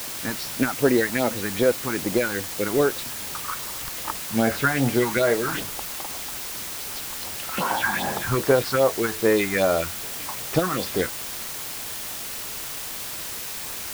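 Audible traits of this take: phasing stages 4, 2.5 Hz, lowest notch 470–4200 Hz; a quantiser's noise floor 6-bit, dither triangular

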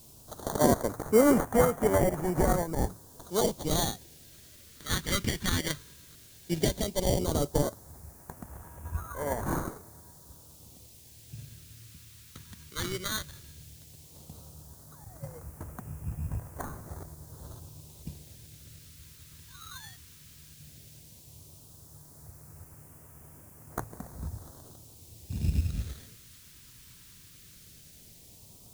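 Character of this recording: aliases and images of a low sample rate 2600 Hz, jitter 0%; tremolo saw up 9.1 Hz, depth 35%; a quantiser's noise floor 10-bit, dither triangular; phasing stages 2, 0.14 Hz, lowest notch 690–3600 Hz

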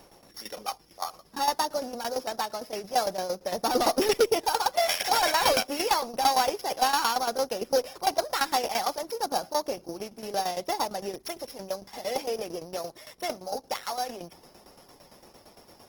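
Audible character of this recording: a buzz of ramps at a fixed pitch in blocks of 8 samples; tremolo saw down 8.8 Hz, depth 75%; Opus

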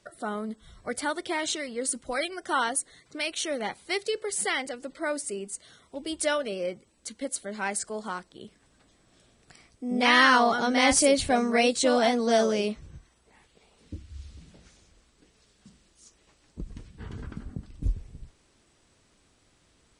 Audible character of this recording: noise floor -65 dBFS; spectral tilt -2.5 dB/oct

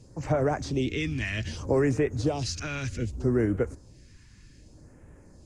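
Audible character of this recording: phasing stages 2, 0.64 Hz, lowest notch 540–4200 Hz

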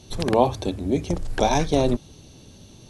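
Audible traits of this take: noise floor -49 dBFS; spectral tilt -5.5 dB/oct

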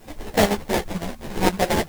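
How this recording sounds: aliases and images of a low sample rate 1300 Hz, jitter 20%; chopped level 5.9 Hz, depth 65%, duty 70%; a quantiser's noise floor 10-bit, dither triangular; a shimmering, thickened sound

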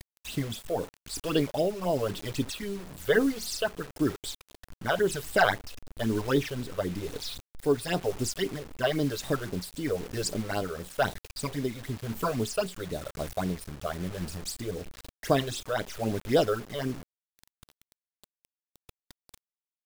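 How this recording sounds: phasing stages 8, 3.8 Hz, lowest notch 240–2100 Hz; a quantiser's noise floor 8-bit, dither none; tremolo triangle 1 Hz, depth 45%

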